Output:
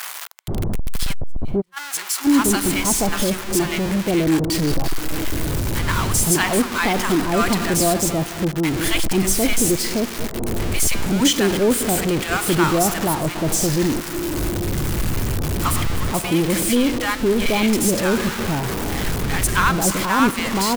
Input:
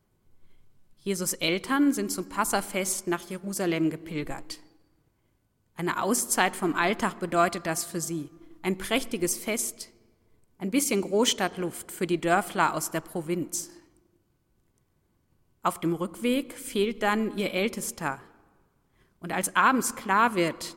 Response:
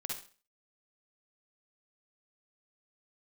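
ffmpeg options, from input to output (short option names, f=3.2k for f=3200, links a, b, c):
-filter_complex "[0:a]aeval=exprs='val(0)+0.5*0.0841*sgn(val(0))':c=same,asplit=3[a][b][c];[a]afade=t=out:st=1.12:d=0.02[d];[b]agate=range=-45dB:threshold=-17dB:ratio=16:detection=peak,afade=t=in:st=1.12:d=0.02,afade=t=out:st=1.76:d=0.02[e];[c]afade=t=in:st=1.76:d=0.02[f];[d][e][f]amix=inputs=3:normalize=0,lowshelf=f=130:g=8,asplit=2[g][h];[h]acrusher=bits=4:mix=0:aa=0.5,volume=-8dB[i];[g][i]amix=inputs=2:normalize=0,acrossover=split=910[j][k];[j]adelay=480[l];[l][k]amix=inputs=2:normalize=0"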